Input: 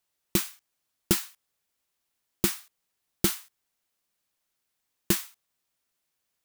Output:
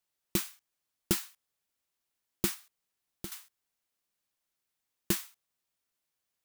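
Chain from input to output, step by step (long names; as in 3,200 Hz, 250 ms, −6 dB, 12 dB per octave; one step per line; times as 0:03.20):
0:02.54–0:03.32: downward compressor 2 to 1, threshold −44 dBFS, peak gain reduction 14.5 dB
level −5 dB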